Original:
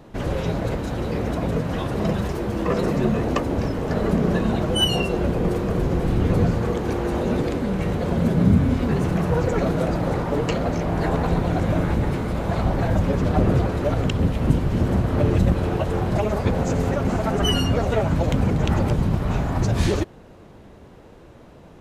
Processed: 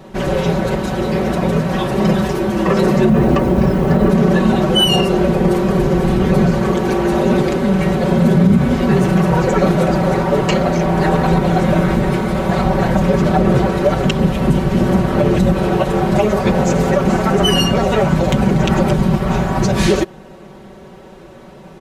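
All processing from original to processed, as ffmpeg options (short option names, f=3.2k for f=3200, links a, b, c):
-filter_complex "[0:a]asettb=1/sr,asplit=3[a][b][c];[a]atrim=end=3.094[d];[b]atrim=start=3.09:end=4.1,asetpts=PTS-STARTPTS,afade=t=in:d=0.004:c=qsin,afade=t=out:st=1.006:d=0.004:c=qsin,highpass=f=100:p=1,aemphasis=mode=reproduction:type=bsi,acrusher=bits=9:dc=4:mix=0:aa=0.000001[e];[c]atrim=start=4.096[f];[d][e]acrossfade=d=0.004:c1=hsin:c2=qsin[g];[g][f]acrossfade=d=0.004:c1=qsin:c2=hsin,lowshelf=f=81:g=-8.5,aecho=1:1:5.3:0.81,alimiter=level_in=9.5dB:limit=-1dB:release=50:level=0:latency=1,volume=-2.5dB"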